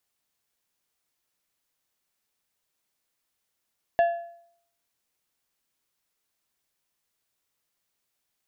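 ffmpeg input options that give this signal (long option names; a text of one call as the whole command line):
ffmpeg -f lavfi -i "aevalsrc='0.178*pow(10,-3*t/0.65)*sin(2*PI*684*t)+0.0447*pow(10,-3*t/0.494)*sin(2*PI*1710*t)+0.0112*pow(10,-3*t/0.429)*sin(2*PI*2736*t)+0.00282*pow(10,-3*t/0.401)*sin(2*PI*3420*t)+0.000708*pow(10,-3*t/0.371)*sin(2*PI*4446*t)':duration=1.55:sample_rate=44100" out.wav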